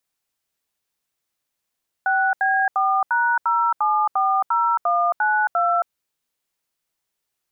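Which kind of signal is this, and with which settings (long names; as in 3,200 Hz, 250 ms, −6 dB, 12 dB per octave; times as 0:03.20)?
touch tones "6B4#0740192", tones 271 ms, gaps 78 ms, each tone −19 dBFS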